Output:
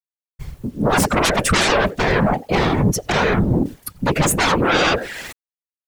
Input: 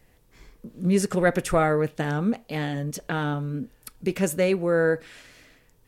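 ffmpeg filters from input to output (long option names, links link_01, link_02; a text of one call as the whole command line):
ffmpeg -i in.wav -filter_complex "[0:a]afftdn=noise_reduction=13:noise_floor=-37,agate=range=-45dB:threshold=-59dB:ratio=16:detection=peak,equalizer=frequency=770:width_type=o:width=0.33:gain=5,asplit=2[link_01][link_02];[link_02]adelay=90,highpass=300,lowpass=3400,asoftclip=type=hard:threshold=-15.5dB,volume=-24dB[link_03];[link_01][link_03]amix=inputs=2:normalize=0,aeval=exprs='0.447*sin(PI/2*7.94*val(0)/0.447)':channel_layout=same,acrusher=bits=7:mix=0:aa=0.000001,afftfilt=real='hypot(re,im)*cos(2*PI*random(0))':imag='hypot(re,im)*sin(2*PI*random(1))':win_size=512:overlap=0.75,areverse,acompressor=mode=upward:threshold=-21dB:ratio=2.5,areverse" out.wav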